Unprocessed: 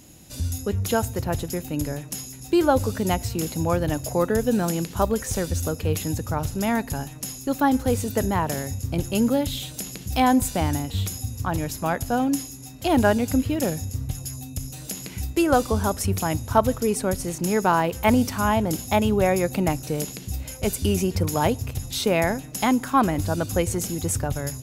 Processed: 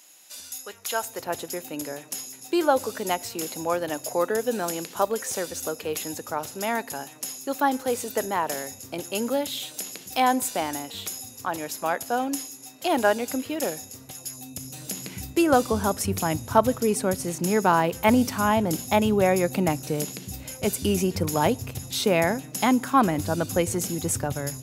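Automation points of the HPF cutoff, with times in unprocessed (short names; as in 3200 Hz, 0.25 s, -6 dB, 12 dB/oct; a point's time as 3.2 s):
0.87 s 940 Hz
1.31 s 390 Hz
14.18 s 390 Hz
14.89 s 130 Hz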